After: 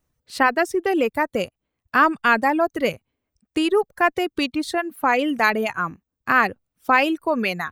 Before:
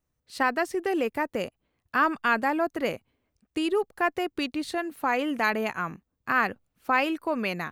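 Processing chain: reverb removal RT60 1.2 s; gain +7 dB

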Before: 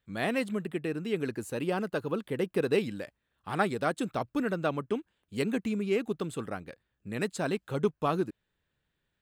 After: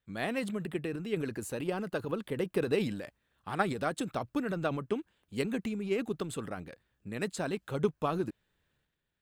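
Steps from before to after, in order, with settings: transient shaper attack +5 dB, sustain +9 dB; gain -5.5 dB

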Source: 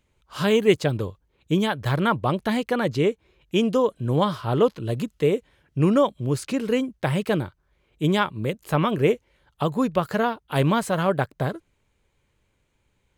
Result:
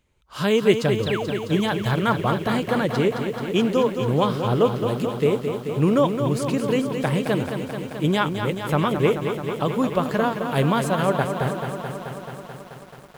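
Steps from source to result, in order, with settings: painted sound fall, 1.06–1.32, 210–4400 Hz -31 dBFS; lo-fi delay 0.217 s, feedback 80%, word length 8-bit, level -7.5 dB

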